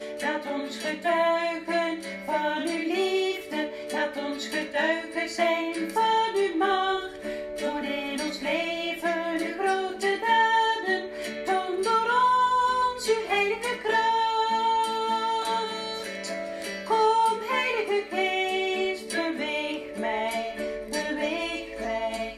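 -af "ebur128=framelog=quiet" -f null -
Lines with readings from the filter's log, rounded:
Integrated loudness:
  I:         -26.4 LUFS
  Threshold: -36.4 LUFS
Loudness range:
  LRA:         4.5 LU
  Threshold: -46.2 LUFS
  LRA low:   -28.4 LUFS
  LRA high:  -23.9 LUFS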